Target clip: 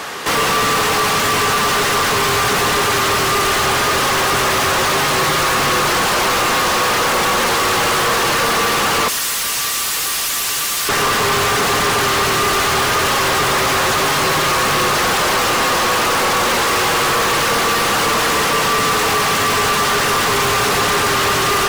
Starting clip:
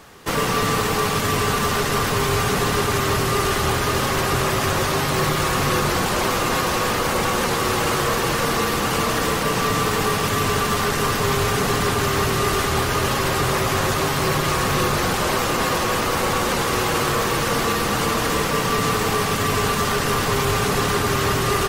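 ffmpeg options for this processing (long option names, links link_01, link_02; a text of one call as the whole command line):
ffmpeg -i in.wav -filter_complex "[0:a]asettb=1/sr,asplit=3[link_01][link_02][link_03];[link_01]atrim=end=9.084[link_04];[link_02]atrim=start=9.08:end=10.89,asetpts=PTS-STARTPTS,afade=type=in:duration=0.004:curve=qsin,afade=type=out:start_time=1.806:duration=0.004:curve=qsin,aderivative[link_05];[link_03]atrim=start=10.886[link_06];[link_04][link_05]acrossfade=duration=0.004:curve1=hsin:curve2=qsin[link_07];[link_07][link_06]acrossfade=duration=0.004:curve1=qsin:curve2=hsin,asplit=2[link_08][link_09];[link_09]highpass=frequency=720:poles=1,volume=28dB,asoftclip=type=tanh:threshold=-10dB[link_10];[link_08][link_10]amix=inputs=2:normalize=0,lowpass=frequency=7000:poles=1,volume=-6dB" out.wav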